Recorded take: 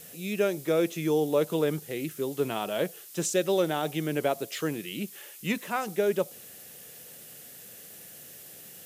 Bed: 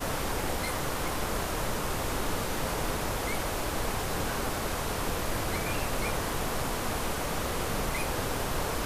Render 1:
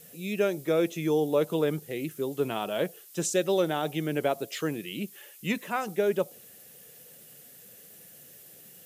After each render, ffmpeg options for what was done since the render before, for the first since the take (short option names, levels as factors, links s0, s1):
-af "afftdn=nr=6:nf=-48"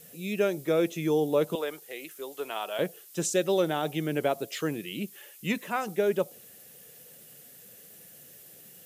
-filter_complex "[0:a]asettb=1/sr,asplit=3[s0][s1][s2];[s0]atrim=end=1.554[s3];[s1]atrim=start=1.55:end=2.79,asetpts=PTS-STARTPTS,afade=t=in:d=0.004:c=qsin,afade=t=out:st=1.236:d=0.004:c=qsin,highpass=610[s4];[s2]atrim=start=2.786[s5];[s3][s4]acrossfade=d=0.004:c1=hsin:c2=qsin[s6];[s6][s5]acrossfade=d=0.004:c1=qsin:c2=hsin"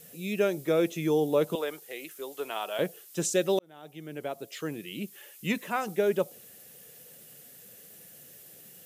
-filter_complex "[0:a]asplit=2[s0][s1];[s0]atrim=end=3.59,asetpts=PTS-STARTPTS,afade=t=out:st=3.586:d=0.004:c=hsin[s2];[s1]atrim=start=3.59,asetpts=PTS-STARTPTS,afade=t=in:d=1.79[s3];[s2][s3]concat=n=2:v=0:a=1"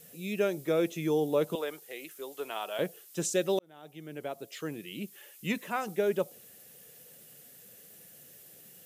-af "volume=0.75"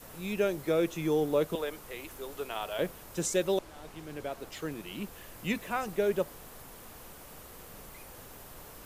-filter_complex "[1:a]volume=0.106[s0];[0:a][s0]amix=inputs=2:normalize=0"